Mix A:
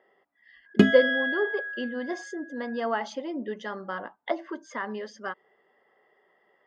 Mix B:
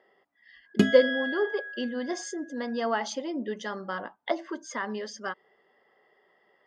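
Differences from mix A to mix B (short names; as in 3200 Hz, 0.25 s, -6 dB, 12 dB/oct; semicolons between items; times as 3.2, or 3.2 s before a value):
background -5.0 dB; master: add tone controls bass +2 dB, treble +11 dB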